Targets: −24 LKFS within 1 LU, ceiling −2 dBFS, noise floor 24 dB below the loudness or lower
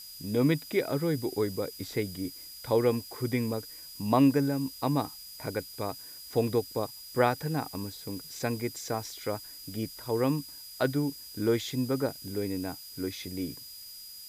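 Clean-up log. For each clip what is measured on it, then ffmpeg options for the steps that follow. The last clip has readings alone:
interfering tone 4,900 Hz; level of the tone −46 dBFS; background noise floor −46 dBFS; target noise floor −55 dBFS; integrated loudness −31.0 LKFS; sample peak −10.5 dBFS; target loudness −24.0 LKFS
→ -af "bandreject=frequency=4900:width=30"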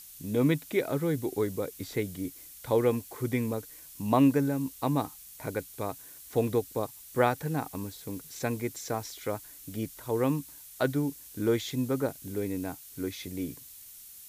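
interfering tone none found; background noise floor −49 dBFS; target noise floor −55 dBFS
→ -af "afftdn=noise_reduction=6:noise_floor=-49"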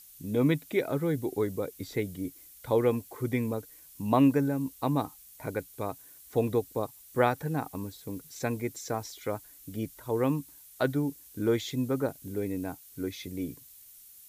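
background noise floor −53 dBFS; target noise floor −55 dBFS
→ -af "afftdn=noise_reduction=6:noise_floor=-53"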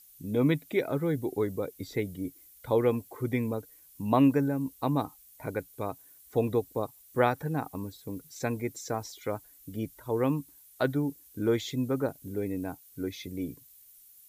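background noise floor −57 dBFS; integrated loudness −31.0 LKFS; sample peak −10.5 dBFS; target loudness −24.0 LKFS
→ -af "volume=7dB"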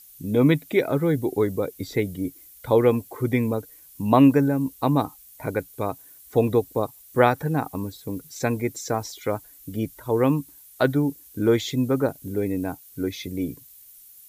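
integrated loudness −24.0 LKFS; sample peak −3.5 dBFS; background noise floor −50 dBFS

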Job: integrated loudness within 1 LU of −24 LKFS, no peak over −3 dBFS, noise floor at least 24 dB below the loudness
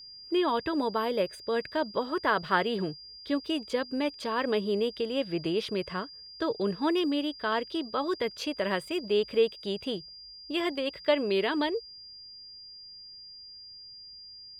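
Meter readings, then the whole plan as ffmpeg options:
interfering tone 4,800 Hz; level of the tone −45 dBFS; integrated loudness −30.0 LKFS; sample peak −11.5 dBFS; target loudness −24.0 LKFS
→ -af "bandreject=frequency=4800:width=30"
-af "volume=6dB"

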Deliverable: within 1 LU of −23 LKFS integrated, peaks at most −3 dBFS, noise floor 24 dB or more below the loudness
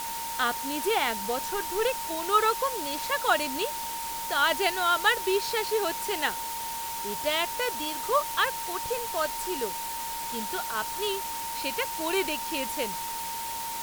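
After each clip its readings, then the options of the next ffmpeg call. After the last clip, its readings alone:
interfering tone 920 Hz; level of the tone −34 dBFS; background noise floor −34 dBFS; target noise floor −52 dBFS; integrated loudness −28.0 LKFS; sample peak −9.5 dBFS; target loudness −23.0 LKFS
→ -af "bandreject=frequency=920:width=30"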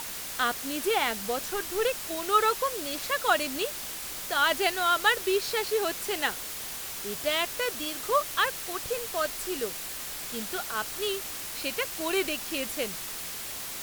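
interfering tone none found; background noise floor −37 dBFS; target noise floor −53 dBFS
→ -af "afftdn=noise_reduction=16:noise_floor=-37"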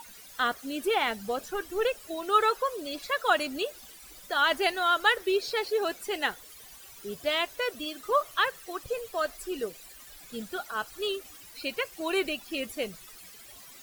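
background noise floor −50 dBFS; target noise floor −54 dBFS
→ -af "afftdn=noise_reduction=6:noise_floor=-50"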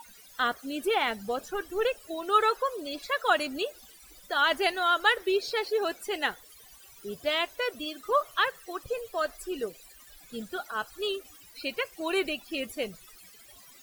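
background noise floor −53 dBFS; target noise floor −54 dBFS
→ -af "afftdn=noise_reduction=6:noise_floor=-53"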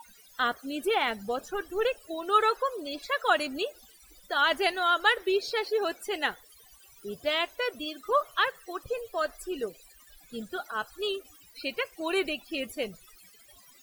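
background noise floor −57 dBFS; integrated loudness −29.5 LKFS; sample peak −10.5 dBFS; target loudness −23.0 LKFS
→ -af "volume=6.5dB"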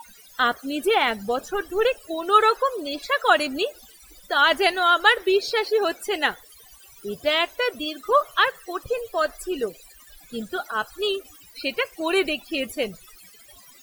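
integrated loudness −23.0 LKFS; sample peak −4.0 dBFS; background noise floor −50 dBFS

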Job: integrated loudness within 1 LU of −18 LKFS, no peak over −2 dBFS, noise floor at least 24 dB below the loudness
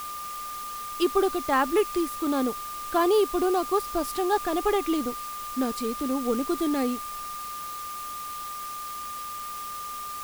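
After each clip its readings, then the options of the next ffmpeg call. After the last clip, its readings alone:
interfering tone 1,200 Hz; level of the tone −34 dBFS; background noise floor −36 dBFS; target noise floor −52 dBFS; integrated loudness −28.0 LKFS; sample peak −10.5 dBFS; target loudness −18.0 LKFS
→ -af "bandreject=frequency=1200:width=30"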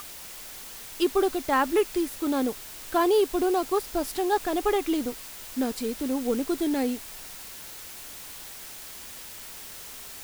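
interfering tone none found; background noise floor −42 dBFS; target noise floor −51 dBFS
→ -af "afftdn=noise_reduction=9:noise_floor=-42"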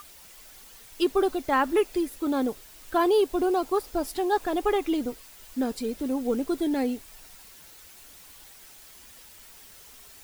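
background noise floor −50 dBFS; target noise floor −51 dBFS
→ -af "afftdn=noise_reduction=6:noise_floor=-50"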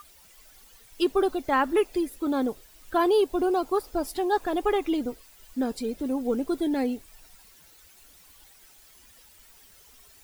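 background noise floor −55 dBFS; integrated loudness −27.0 LKFS; sample peak −12.0 dBFS; target loudness −18.0 LKFS
→ -af "volume=9dB"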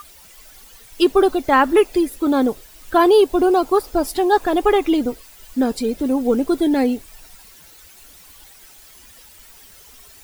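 integrated loudness −18.0 LKFS; sample peak −3.0 dBFS; background noise floor −46 dBFS

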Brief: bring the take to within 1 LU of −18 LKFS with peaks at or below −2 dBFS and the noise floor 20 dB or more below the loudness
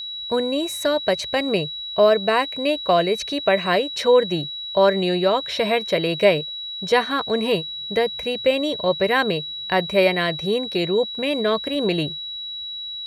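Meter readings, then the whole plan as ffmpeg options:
interfering tone 3,900 Hz; level of the tone −29 dBFS; integrated loudness −21.0 LKFS; sample peak −3.5 dBFS; target loudness −18.0 LKFS
→ -af "bandreject=frequency=3900:width=30"
-af "volume=3dB,alimiter=limit=-2dB:level=0:latency=1"

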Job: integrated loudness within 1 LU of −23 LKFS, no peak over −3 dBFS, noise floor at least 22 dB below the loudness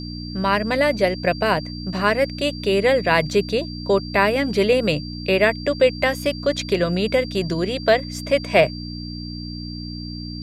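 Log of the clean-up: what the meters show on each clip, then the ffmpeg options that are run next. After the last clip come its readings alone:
mains hum 60 Hz; hum harmonics up to 300 Hz; level of the hum −29 dBFS; interfering tone 4,700 Hz; level of the tone −36 dBFS; integrated loudness −20.0 LKFS; sample peak −2.5 dBFS; target loudness −23.0 LKFS
→ -af "bandreject=frequency=60:width_type=h:width=4,bandreject=frequency=120:width_type=h:width=4,bandreject=frequency=180:width_type=h:width=4,bandreject=frequency=240:width_type=h:width=4,bandreject=frequency=300:width_type=h:width=4"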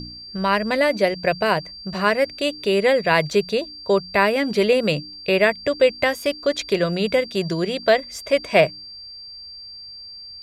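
mains hum none found; interfering tone 4,700 Hz; level of the tone −36 dBFS
→ -af "bandreject=frequency=4700:width=30"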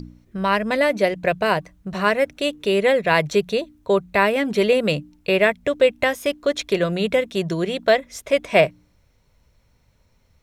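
interfering tone none found; integrated loudness −20.5 LKFS; sample peak −3.0 dBFS; target loudness −23.0 LKFS
→ -af "volume=-2.5dB"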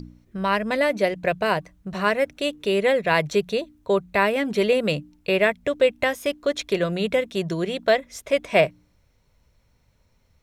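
integrated loudness −23.0 LKFS; sample peak −5.5 dBFS; background noise floor −64 dBFS

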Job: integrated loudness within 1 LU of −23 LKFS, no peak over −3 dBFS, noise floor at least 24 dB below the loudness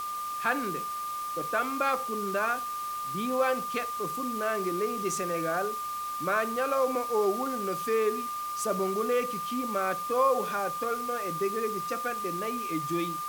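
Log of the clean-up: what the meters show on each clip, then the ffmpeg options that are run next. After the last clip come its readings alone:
interfering tone 1,200 Hz; level of the tone −32 dBFS; background noise floor −35 dBFS; target noise floor −54 dBFS; integrated loudness −29.5 LKFS; sample peak −13.5 dBFS; target loudness −23.0 LKFS
→ -af "bandreject=frequency=1200:width=30"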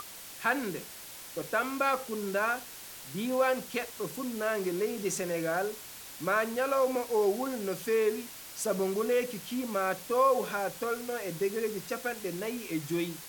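interfering tone none found; background noise floor −46 dBFS; target noise floor −56 dBFS
→ -af "afftdn=noise_reduction=10:noise_floor=-46"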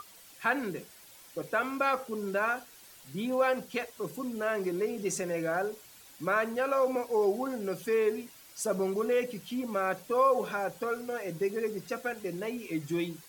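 background noise floor −54 dBFS; target noise floor −56 dBFS
→ -af "afftdn=noise_reduction=6:noise_floor=-54"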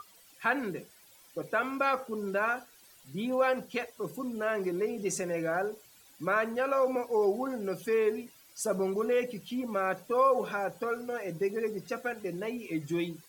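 background noise floor −58 dBFS; integrated loudness −31.5 LKFS; sample peak −14.0 dBFS; target loudness −23.0 LKFS
→ -af "volume=8.5dB"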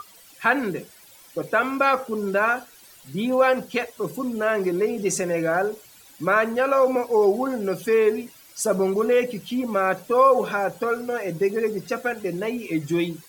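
integrated loudness −23.0 LKFS; sample peak −5.5 dBFS; background noise floor −50 dBFS

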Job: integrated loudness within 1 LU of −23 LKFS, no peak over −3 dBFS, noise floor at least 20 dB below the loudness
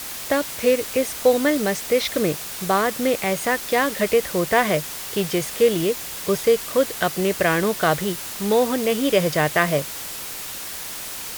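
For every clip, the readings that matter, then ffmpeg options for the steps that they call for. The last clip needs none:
background noise floor −33 dBFS; target noise floor −42 dBFS; integrated loudness −21.5 LKFS; sample peak −3.0 dBFS; target loudness −23.0 LKFS
→ -af "afftdn=noise_reduction=9:noise_floor=-33"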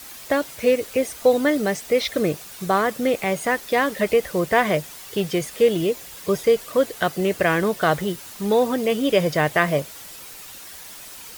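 background noise floor −40 dBFS; target noise floor −42 dBFS
→ -af "afftdn=noise_reduction=6:noise_floor=-40"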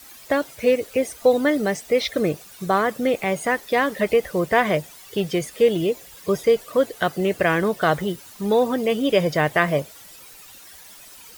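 background noise floor −45 dBFS; integrated loudness −22.0 LKFS; sample peak −3.5 dBFS; target loudness −23.0 LKFS
→ -af "volume=-1dB"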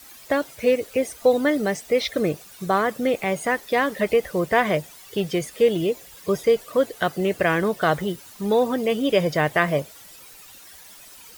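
integrated loudness −23.0 LKFS; sample peak −4.5 dBFS; background noise floor −46 dBFS

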